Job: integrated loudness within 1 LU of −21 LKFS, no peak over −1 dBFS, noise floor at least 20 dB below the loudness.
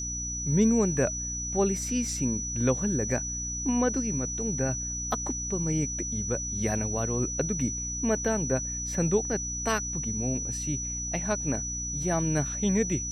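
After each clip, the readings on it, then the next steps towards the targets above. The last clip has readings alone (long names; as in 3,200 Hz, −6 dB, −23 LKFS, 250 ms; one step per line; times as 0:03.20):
mains hum 60 Hz; hum harmonics up to 300 Hz; level of the hum −36 dBFS; interfering tone 5,900 Hz; level of the tone −32 dBFS; integrated loudness −28.0 LKFS; sample peak −12.0 dBFS; target loudness −21.0 LKFS
→ hum removal 60 Hz, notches 5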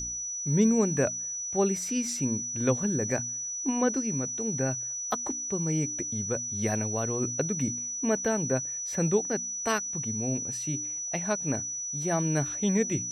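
mains hum none found; interfering tone 5,900 Hz; level of the tone −32 dBFS
→ notch filter 5,900 Hz, Q 30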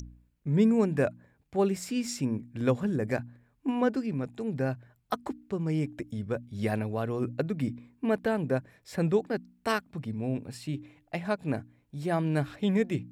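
interfering tone none found; integrated loudness −30.5 LKFS; sample peak −12.0 dBFS; target loudness −21.0 LKFS
→ level +9.5 dB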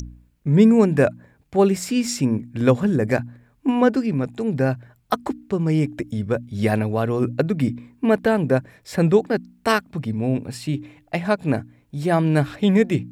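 integrated loudness −21.0 LKFS; sample peak −2.5 dBFS; background noise floor −60 dBFS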